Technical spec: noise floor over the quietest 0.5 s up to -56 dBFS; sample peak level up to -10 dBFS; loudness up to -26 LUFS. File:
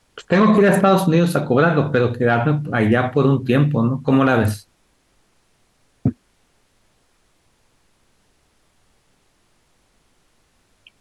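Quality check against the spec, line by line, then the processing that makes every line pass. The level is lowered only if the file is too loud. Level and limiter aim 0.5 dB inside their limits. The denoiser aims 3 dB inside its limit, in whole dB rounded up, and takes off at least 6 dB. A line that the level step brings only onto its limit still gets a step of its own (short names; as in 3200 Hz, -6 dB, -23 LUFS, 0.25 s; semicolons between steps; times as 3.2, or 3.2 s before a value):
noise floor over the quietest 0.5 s -62 dBFS: OK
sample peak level -5.5 dBFS: fail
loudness -17.0 LUFS: fail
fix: gain -9.5 dB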